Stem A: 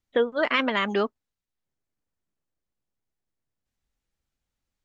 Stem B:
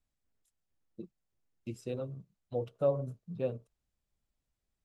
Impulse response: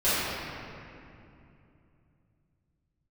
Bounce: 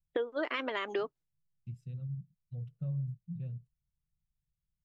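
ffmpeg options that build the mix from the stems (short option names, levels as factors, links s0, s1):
-filter_complex "[0:a]agate=range=0.0224:threshold=0.00631:ratio=3:detection=peak,lowshelf=f=250:t=q:w=3:g=-8,volume=0.562[s0];[1:a]firequalizer=gain_entry='entry(100,0);entry(150,8);entry(280,-25);entry(860,-28);entry(1800,-16);entry(5300,-20)':delay=0.05:min_phase=1,volume=0.944[s1];[s0][s1]amix=inputs=2:normalize=0,acompressor=threshold=0.0282:ratio=4"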